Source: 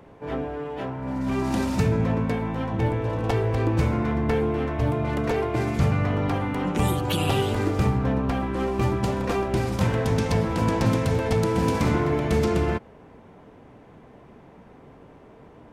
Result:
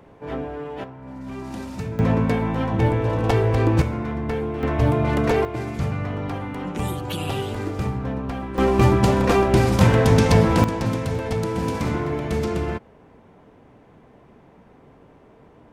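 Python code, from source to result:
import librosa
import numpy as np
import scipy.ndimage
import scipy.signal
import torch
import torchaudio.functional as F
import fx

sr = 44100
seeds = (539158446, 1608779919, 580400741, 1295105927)

y = fx.gain(x, sr, db=fx.steps((0.0, 0.0), (0.84, -8.0), (1.99, 4.5), (3.82, -2.5), (4.63, 5.0), (5.45, -3.5), (8.58, 7.5), (10.64, -2.0)))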